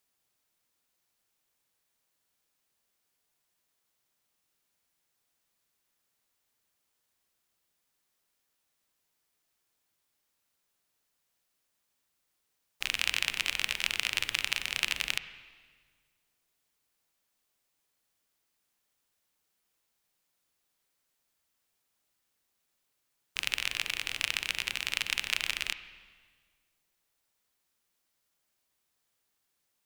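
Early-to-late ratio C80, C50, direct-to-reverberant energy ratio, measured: 13.5 dB, 12.0 dB, 11.5 dB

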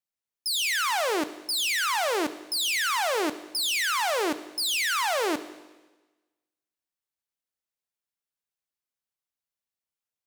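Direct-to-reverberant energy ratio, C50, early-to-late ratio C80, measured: 11.5 dB, 13.5 dB, 15.5 dB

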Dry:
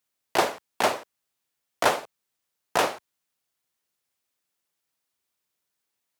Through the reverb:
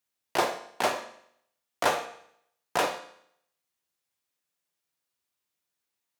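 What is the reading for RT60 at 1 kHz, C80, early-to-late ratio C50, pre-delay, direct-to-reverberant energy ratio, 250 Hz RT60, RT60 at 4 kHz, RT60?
0.65 s, 13.5 dB, 10.5 dB, 4 ms, 6.0 dB, 0.70 s, 0.70 s, 0.70 s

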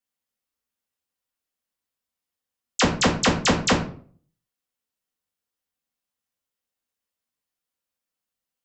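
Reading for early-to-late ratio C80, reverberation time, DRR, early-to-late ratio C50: 12.5 dB, 0.50 s, -3.5 dB, 8.0 dB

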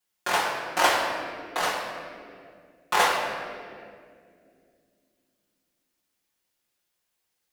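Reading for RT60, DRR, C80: 2.3 s, -7.5 dB, 3.5 dB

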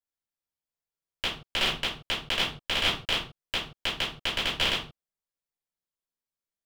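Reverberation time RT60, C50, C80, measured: no single decay rate, 6.0 dB, 10.5 dB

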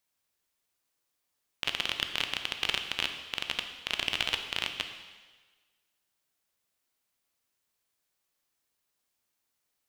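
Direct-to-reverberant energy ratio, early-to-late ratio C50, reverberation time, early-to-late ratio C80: 5.5 dB, 7.5 dB, 1.4 s, 9.0 dB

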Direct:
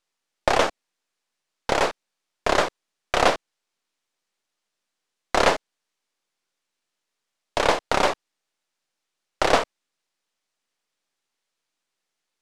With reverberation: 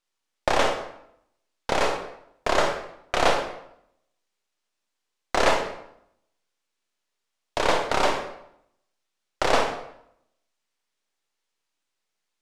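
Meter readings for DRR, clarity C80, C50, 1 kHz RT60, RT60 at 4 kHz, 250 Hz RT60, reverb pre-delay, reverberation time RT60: 3.0 dB, 8.5 dB, 5.0 dB, 0.75 s, 0.55 s, 0.80 s, 26 ms, 0.75 s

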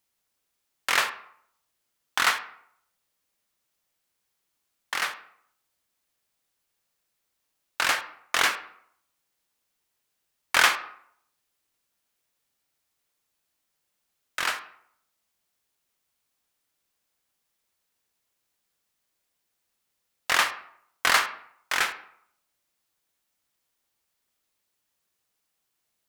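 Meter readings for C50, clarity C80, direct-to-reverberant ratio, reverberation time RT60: 12.0 dB, 15.5 dB, 9.0 dB, 0.65 s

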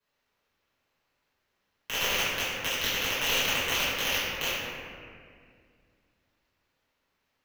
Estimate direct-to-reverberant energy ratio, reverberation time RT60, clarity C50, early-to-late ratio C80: -11.5 dB, 2.1 s, -3.0 dB, -1.0 dB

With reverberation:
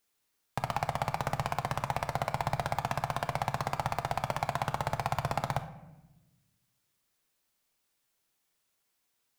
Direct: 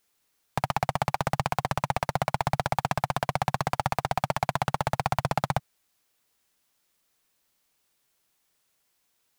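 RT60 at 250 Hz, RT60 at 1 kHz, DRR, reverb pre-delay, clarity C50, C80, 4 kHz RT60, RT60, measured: 1.8 s, 0.90 s, 8.0 dB, 9 ms, 11.0 dB, 14.5 dB, 0.65 s, 1.0 s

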